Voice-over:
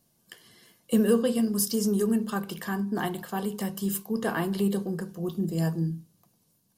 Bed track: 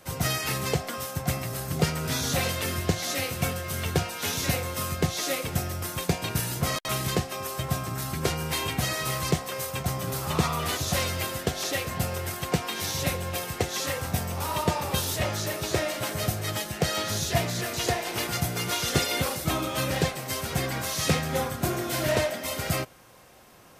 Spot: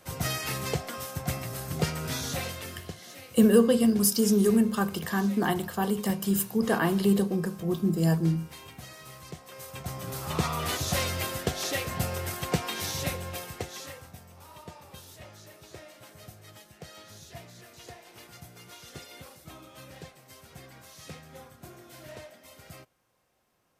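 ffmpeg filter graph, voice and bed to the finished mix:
-filter_complex "[0:a]adelay=2450,volume=1.41[s0];[1:a]volume=4.22,afade=t=out:st=2.05:d=0.92:silence=0.199526,afade=t=in:st=9.34:d=1.39:silence=0.158489,afade=t=out:st=12.7:d=1.45:silence=0.11885[s1];[s0][s1]amix=inputs=2:normalize=0"

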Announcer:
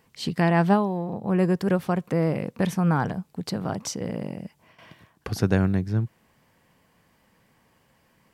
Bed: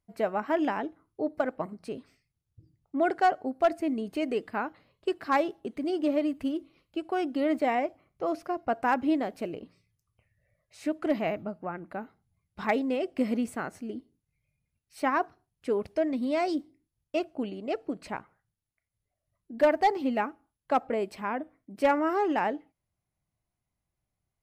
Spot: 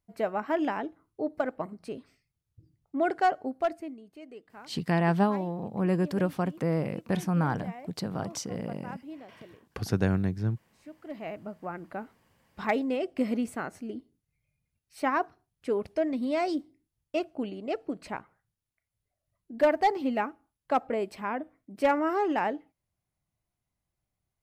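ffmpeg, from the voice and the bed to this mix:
-filter_complex "[0:a]adelay=4500,volume=0.596[s0];[1:a]volume=5.96,afade=t=out:st=3.47:d=0.52:silence=0.158489,afade=t=in:st=11.04:d=0.74:silence=0.149624[s1];[s0][s1]amix=inputs=2:normalize=0"

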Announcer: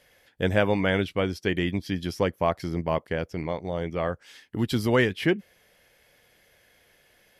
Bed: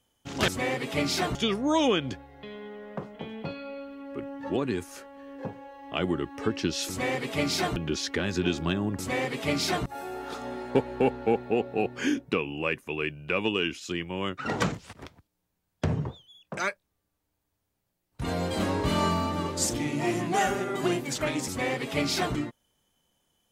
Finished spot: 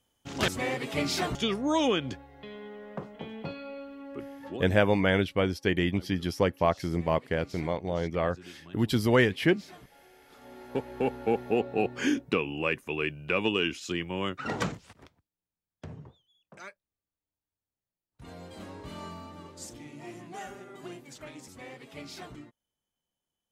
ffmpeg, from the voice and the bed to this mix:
-filter_complex "[0:a]adelay=4200,volume=0.944[s0];[1:a]volume=10,afade=t=out:st=4.06:d=0.76:silence=0.1,afade=t=in:st=10.29:d=1.34:silence=0.0794328,afade=t=out:st=14.18:d=1.07:silence=0.158489[s1];[s0][s1]amix=inputs=2:normalize=0"

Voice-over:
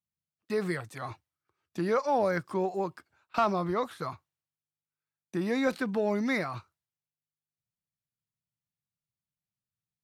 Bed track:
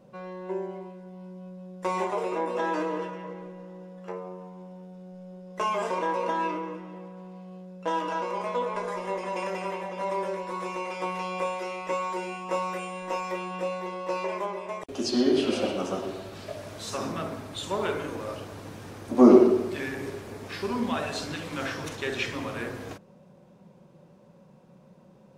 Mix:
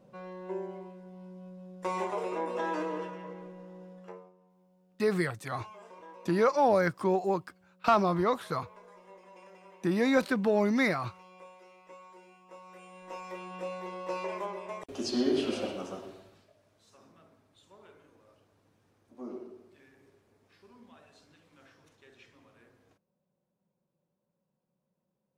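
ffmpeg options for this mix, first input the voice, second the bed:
-filter_complex "[0:a]adelay=4500,volume=1.33[s0];[1:a]volume=4.22,afade=t=out:st=3.91:d=0.41:silence=0.133352,afade=t=in:st=12.63:d=1.37:silence=0.141254,afade=t=out:st=15.41:d=1.09:silence=0.0749894[s1];[s0][s1]amix=inputs=2:normalize=0"

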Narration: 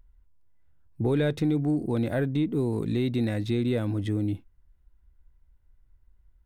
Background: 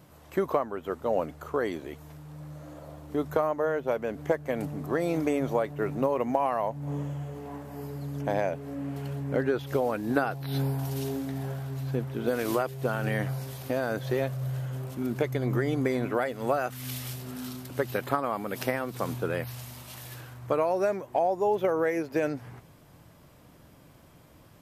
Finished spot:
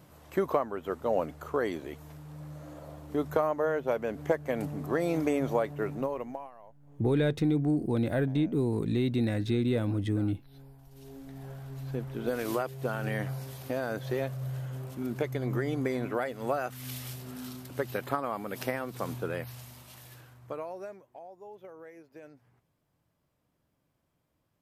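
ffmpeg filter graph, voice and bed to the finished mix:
-filter_complex "[0:a]adelay=6000,volume=0.841[s0];[1:a]volume=9.44,afade=t=out:st=5.68:d=0.83:silence=0.0707946,afade=t=in:st=10.9:d=1.25:silence=0.0944061,afade=t=out:st=19.18:d=1.98:silence=0.11885[s1];[s0][s1]amix=inputs=2:normalize=0"

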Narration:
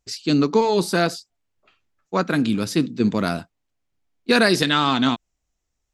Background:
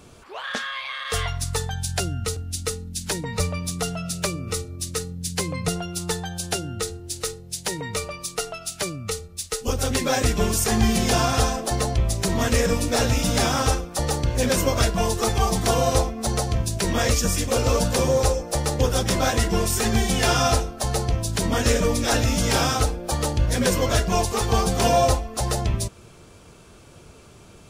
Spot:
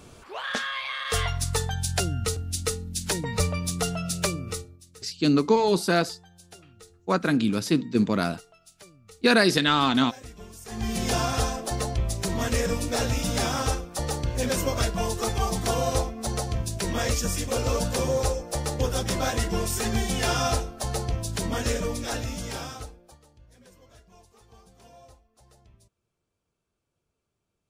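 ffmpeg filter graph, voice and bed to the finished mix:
-filter_complex "[0:a]adelay=4950,volume=0.75[s0];[1:a]volume=7.08,afade=t=out:st=4.29:d=0.52:silence=0.0794328,afade=t=in:st=10.64:d=0.44:silence=0.133352,afade=t=out:st=21.35:d=1.85:silence=0.0375837[s1];[s0][s1]amix=inputs=2:normalize=0"

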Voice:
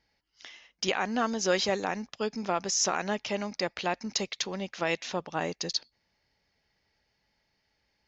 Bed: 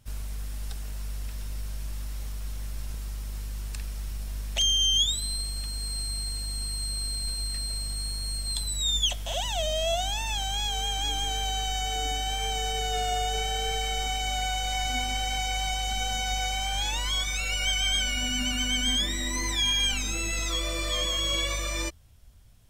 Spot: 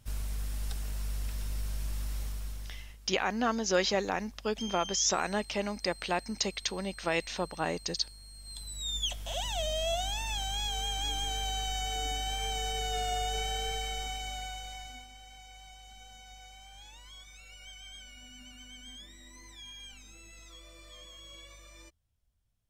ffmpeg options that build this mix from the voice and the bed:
-filter_complex "[0:a]adelay=2250,volume=0.891[s0];[1:a]volume=4.73,afade=t=out:st=2.17:d=0.8:silence=0.125893,afade=t=in:st=8.34:d=1.09:silence=0.199526,afade=t=out:st=13.51:d=1.58:silence=0.125893[s1];[s0][s1]amix=inputs=2:normalize=0"

